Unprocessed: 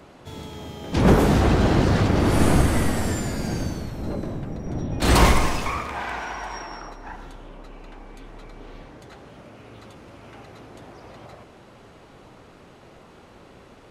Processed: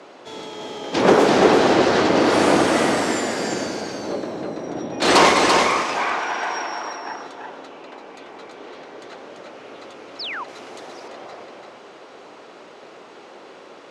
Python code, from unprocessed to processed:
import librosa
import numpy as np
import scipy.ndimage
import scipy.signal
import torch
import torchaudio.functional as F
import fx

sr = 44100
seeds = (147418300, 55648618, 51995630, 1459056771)

p1 = scipy.signal.sosfilt(scipy.signal.cheby1(2, 1.0, [390.0, 6100.0], 'bandpass', fs=sr, output='sos'), x)
p2 = p1 + fx.echo_single(p1, sr, ms=339, db=-4.0, dry=0)
p3 = fx.spec_paint(p2, sr, seeds[0], shape='fall', start_s=10.19, length_s=0.25, low_hz=880.0, high_hz=5600.0, level_db=-36.0)
p4 = fx.high_shelf(p3, sr, hz=5500.0, db=11.0, at=(10.48, 11.08))
y = p4 * 10.0 ** (6.5 / 20.0)